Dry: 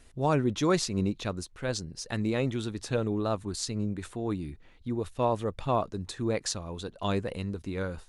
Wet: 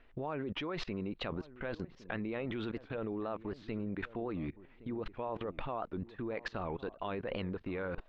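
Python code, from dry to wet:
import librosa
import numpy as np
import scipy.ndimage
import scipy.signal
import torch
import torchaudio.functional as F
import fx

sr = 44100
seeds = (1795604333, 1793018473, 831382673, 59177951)

p1 = scipy.signal.sosfilt(scipy.signal.butter(4, 2800.0, 'lowpass', fs=sr, output='sos'), x)
p2 = fx.peak_eq(p1, sr, hz=86.0, db=-11.5, octaves=2.7)
p3 = fx.level_steps(p2, sr, step_db=23)
p4 = p3 + fx.echo_filtered(p3, sr, ms=1116, feedback_pct=21, hz=1000.0, wet_db=-16.5, dry=0)
p5 = fx.record_warp(p4, sr, rpm=78.0, depth_cents=160.0)
y = F.gain(torch.from_numpy(p5), 8.5).numpy()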